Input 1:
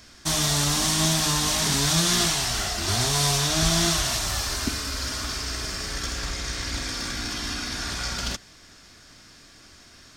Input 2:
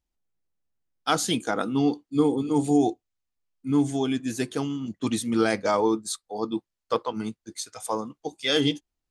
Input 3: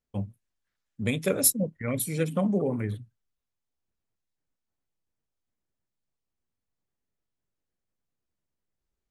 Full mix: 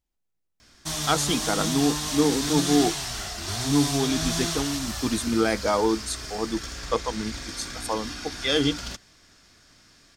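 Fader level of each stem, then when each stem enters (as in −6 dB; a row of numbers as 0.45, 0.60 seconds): −6.0 dB, 0.0 dB, muted; 0.60 s, 0.00 s, muted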